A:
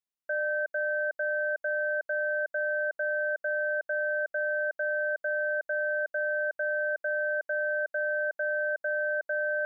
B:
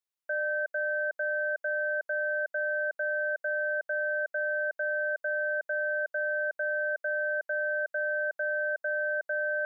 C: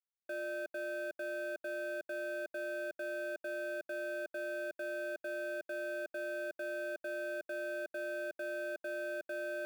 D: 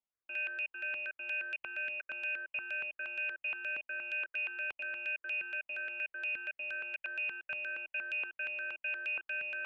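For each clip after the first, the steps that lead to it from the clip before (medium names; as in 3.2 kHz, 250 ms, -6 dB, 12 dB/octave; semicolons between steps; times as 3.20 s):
Bessel high-pass 410 Hz
median filter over 41 samples; peak limiter -38 dBFS, peak gain reduction 6.5 dB; trim +5.5 dB
frequency inversion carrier 3.1 kHz; stepped phaser 8.5 Hz 410–1500 Hz; trim +5 dB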